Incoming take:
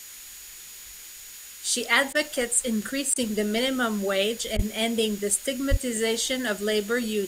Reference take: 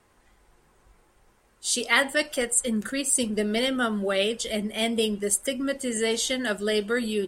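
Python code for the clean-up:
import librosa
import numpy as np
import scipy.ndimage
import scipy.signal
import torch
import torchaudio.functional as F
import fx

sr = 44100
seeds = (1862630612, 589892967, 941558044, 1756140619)

y = fx.notch(x, sr, hz=6800.0, q=30.0)
y = fx.highpass(y, sr, hz=140.0, slope=24, at=(4.55, 4.67), fade=0.02)
y = fx.highpass(y, sr, hz=140.0, slope=24, at=(5.7, 5.82), fade=0.02)
y = fx.fix_interpolate(y, sr, at_s=(2.13, 3.14, 4.57), length_ms=19.0)
y = fx.noise_reduce(y, sr, print_start_s=0.5, print_end_s=1.0, reduce_db=19.0)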